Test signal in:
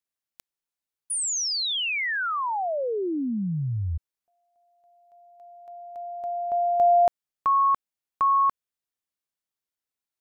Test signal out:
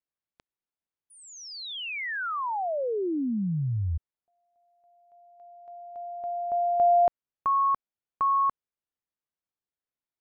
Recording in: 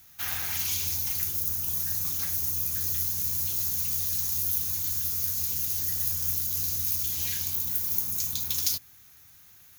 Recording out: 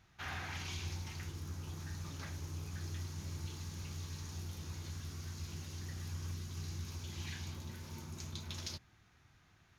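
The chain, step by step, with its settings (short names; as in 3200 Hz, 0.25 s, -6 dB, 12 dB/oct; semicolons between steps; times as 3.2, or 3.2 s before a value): tape spacing loss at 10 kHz 28 dB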